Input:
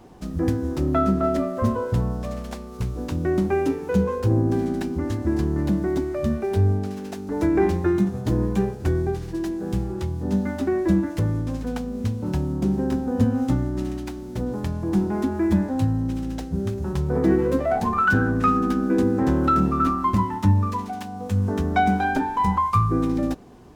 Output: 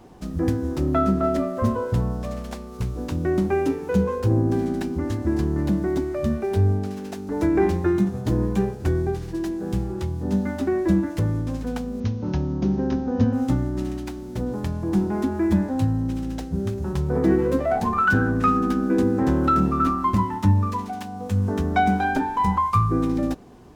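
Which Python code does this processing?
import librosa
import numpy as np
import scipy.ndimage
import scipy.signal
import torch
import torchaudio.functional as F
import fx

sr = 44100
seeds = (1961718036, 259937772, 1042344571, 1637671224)

y = fx.steep_lowpass(x, sr, hz=6500.0, slope=96, at=(12.0, 13.33))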